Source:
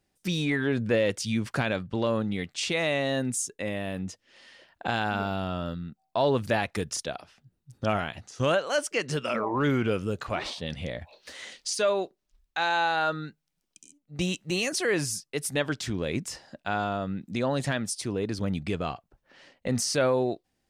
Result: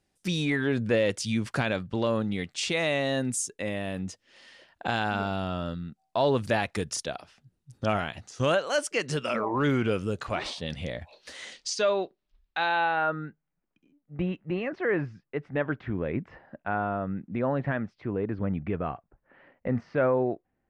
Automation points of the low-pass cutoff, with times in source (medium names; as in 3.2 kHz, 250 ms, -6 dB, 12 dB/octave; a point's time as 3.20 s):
low-pass 24 dB/octave
11.39 s 12 kHz
12.03 s 4.4 kHz
12.57 s 4.4 kHz
13.18 s 2 kHz